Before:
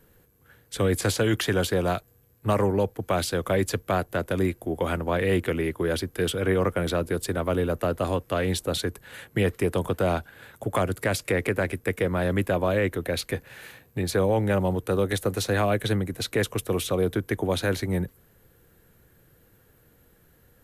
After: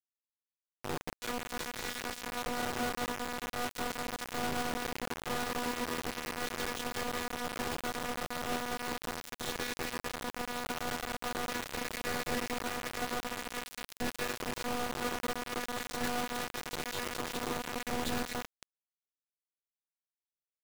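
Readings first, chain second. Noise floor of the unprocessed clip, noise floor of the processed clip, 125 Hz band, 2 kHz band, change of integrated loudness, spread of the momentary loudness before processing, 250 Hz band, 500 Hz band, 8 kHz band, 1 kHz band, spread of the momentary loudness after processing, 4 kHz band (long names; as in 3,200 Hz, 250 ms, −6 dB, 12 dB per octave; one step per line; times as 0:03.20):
−60 dBFS, below −85 dBFS, −20.5 dB, −6.0 dB, −10.5 dB, 6 LU, −12.5 dB, −15.0 dB, −4.5 dB, −4.5 dB, 4 LU, −5.0 dB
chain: feedback delay that plays each chunk backwards 112 ms, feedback 61%, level −4 dB
high-shelf EQ 4,400 Hz +3 dB
downward compressor 6 to 1, threshold −25 dBFS, peak gain reduction 9 dB
brickwall limiter −26.5 dBFS, peak gain reduction 11 dB
phases set to zero 244 Hz
high-frequency loss of the air 270 metres
three-band delay without the direct sound lows, mids, highs 40/490 ms, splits 170/530 Hz
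bit reduction 6 bits
level +3.5 dB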